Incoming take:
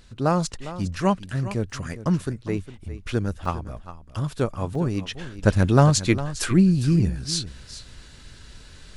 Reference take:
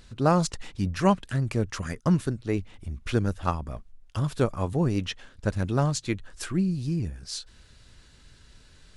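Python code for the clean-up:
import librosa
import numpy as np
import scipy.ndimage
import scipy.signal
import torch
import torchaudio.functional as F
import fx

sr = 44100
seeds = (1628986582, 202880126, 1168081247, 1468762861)

y = fx.fix_interpolate(x, sr, at_s=(1.7, 3.45, 4.75), length_ms=3.3)
y = fx.fix_echo_inverse(y, sr, delay_ms=406, level_db=-14.0)
y = fx.fix_level(y, sr, at_s=5.15, step_db=-8.5)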